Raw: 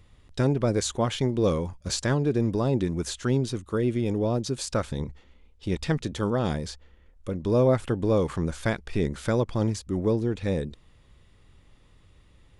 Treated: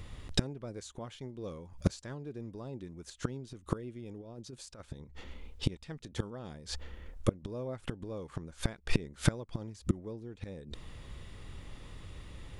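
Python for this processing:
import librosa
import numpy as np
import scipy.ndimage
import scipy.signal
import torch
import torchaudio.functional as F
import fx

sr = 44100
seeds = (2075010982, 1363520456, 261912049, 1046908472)

y = fx.over_compress(x, sr, threshold_db=-27.0, ratio=-0.5, at=(4.2, 4.8))
y = fx.gate_flip(y, sr, shuts_db=-23.0, range_db=-28)
y = F.gain(torch.from_numpy(y), 9.5).numpy()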